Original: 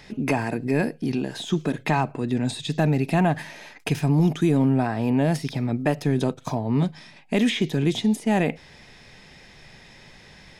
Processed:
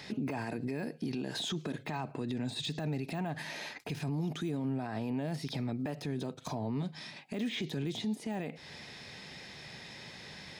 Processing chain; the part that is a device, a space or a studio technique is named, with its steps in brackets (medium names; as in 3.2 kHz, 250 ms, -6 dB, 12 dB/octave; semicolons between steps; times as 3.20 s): broadcast voice chain (high-pass 94 Hz 12 dB/octave; de-esser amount 90%; compression 4:1, threshold -29 dBFS, peak gain reduction 11.5 dB; peaking EQ 4.2 kHz +5 dB 0.54 oct; peak limiter -27.5 dBFS, peak gain reduction 11 dB)